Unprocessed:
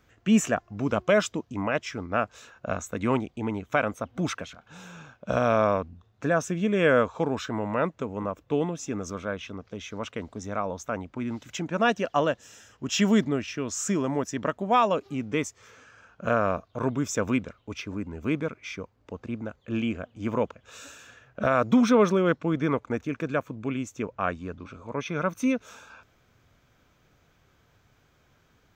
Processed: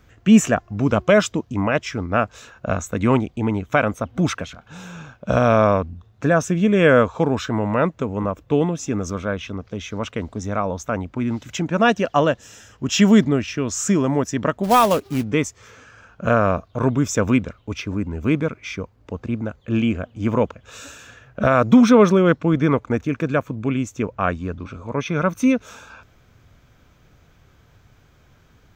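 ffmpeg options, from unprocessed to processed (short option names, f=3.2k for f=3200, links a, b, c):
-filter_complex "[0:a]asplit=3[a][b][c];[a]afade=t=out:st=14.63:d=0.02[d];[b]acrusher=bits=3:mode=log:mix=0:aa=0.000001,afade=t=in:st=14.63:d=0.02,afade=t=out:st=15.22:d=0.02[e];[c]afade=t=in:st=15.22:d=0.02[f];[d][e][f]amix=inputs=3:normalize=0,lowshelf=f=150:g=8,volume=6dB"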